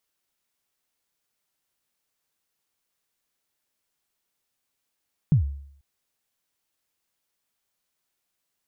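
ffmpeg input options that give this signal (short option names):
-f lavfi -i "aevalsrc='0.251*pow(10,-3*t/0.65)*sin(2*PI*(170*0.11/log(70/170)*(exp(log(70/170)*min(t,0.11)/0.11)-1)+70*max(t-0.11,0)))':d=0.49:s=44100"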